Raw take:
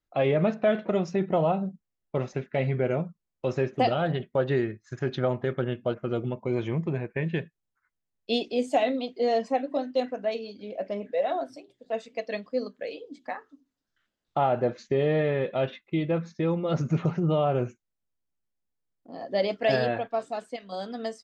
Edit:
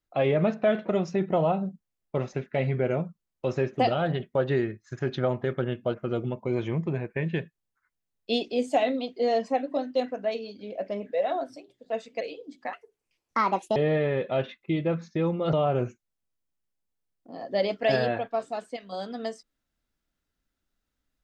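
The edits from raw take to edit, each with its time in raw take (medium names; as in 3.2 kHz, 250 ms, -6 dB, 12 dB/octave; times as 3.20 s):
12.21–12.84 s: delete
13.36–15.00 s: speed 159%
16.77–17.33 s: delete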